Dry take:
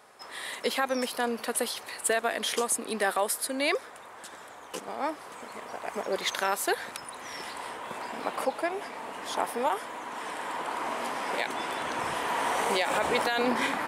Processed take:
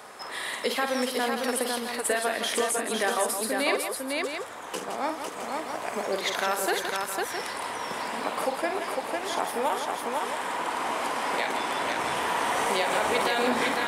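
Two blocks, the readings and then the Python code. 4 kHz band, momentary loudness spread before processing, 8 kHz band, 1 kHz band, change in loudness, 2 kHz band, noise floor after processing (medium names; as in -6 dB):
+3.0 dB, 13 LU, +1.5 dB, +2.5 dB, +2.5 dB, +3.0 dB, -38 dBFS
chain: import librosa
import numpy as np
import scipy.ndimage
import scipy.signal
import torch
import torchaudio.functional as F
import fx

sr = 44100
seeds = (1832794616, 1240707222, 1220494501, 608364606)

y = fx.echo_multitap(x, sr, ms=(48, 166, 503, 664), db=(-7.5, -9.0, -4.5, -10.5))
y = fx.band_squash(y, sr, depth_pct=40)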